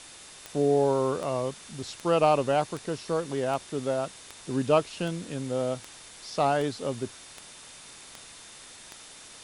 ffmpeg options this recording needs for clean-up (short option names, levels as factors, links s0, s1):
-af "adeclick=t=4,bandreject=f=3600:w=30,afwtdn=0.0056"